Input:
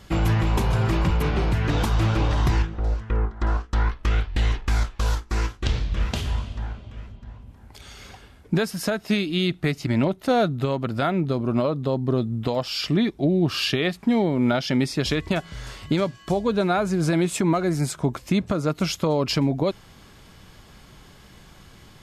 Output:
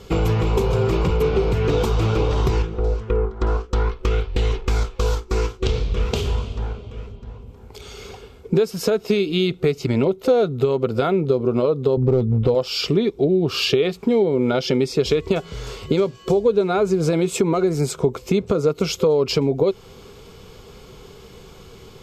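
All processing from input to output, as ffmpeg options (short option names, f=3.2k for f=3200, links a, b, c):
-filter_complex "[0:a]asettb=1/sr,asplit=3[a][b][c];[a]atrim=end=11.974[d];[b]atrim=start=11.97:end=12.55,asetpts=PTS-STARTPTS,afade=t=in:d=0.004:c=qsin,afade=t=out:st=0.576:d=0.004:c=qsin,aemphasis=mode=reproduction:type=bsi,volume=14dB,asoftclip=hard,volume=-14dB[e];[c]atrim=start=12.546[f];[d][e]acrossfade=d=0.004:c1=hsin:c2=qsin[g];[g][f]acrossfade=d=0.004:c1=qsin:c2=hsin,superequalizer=7b=3.98:11b=0.447:16b=0.501,acompressor=threshold=-20dB:ratio=3,volume=4dB"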